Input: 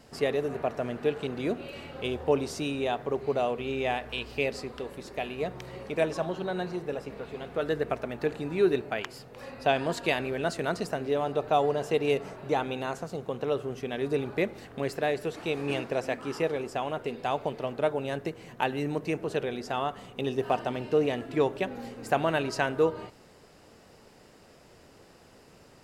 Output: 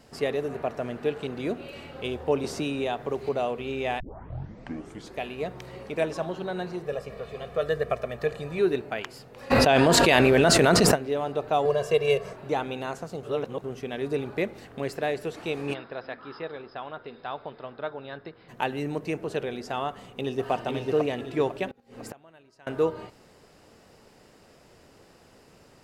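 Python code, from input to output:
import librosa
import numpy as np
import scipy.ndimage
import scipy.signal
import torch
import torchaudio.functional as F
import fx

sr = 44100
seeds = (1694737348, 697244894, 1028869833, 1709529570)

y = fx.band_squash(x, sr, depth_pct=70, at=(2.44, 3.29))
y = fx.comb(y, sr, ms=1.7, depth=0.71, at=(6.85, 8.59))
y = fx.env_flatten(y, sr, amount_pct=100, at=(9.5, 10.94), fade=0.02)
y = fx.comb(y, sr, ms=1.8, depth=0.96, at=(11.65, 12.33))
y = fx.cheby_ripple(y, sr, hz=5200.0, ripple_db=9, at=(15.73, 18.48), fade=0.02)
y = fx.echo_throw(y, sr, start_s=19.89, length_s=0.62, ms=500, feedback_pct=40, wet_db=-2.0)
y = fx.gate_flip(y, sr, shuts_db=-28.0, range_db=-27, at=(21.68, 22.67))
y = fx.edit(y, sr, fx.tape_start(start_s=4.0, length_s=1.19),
    fx.reverse_span(start_s=13.23, length_s=0.41), tone=tone)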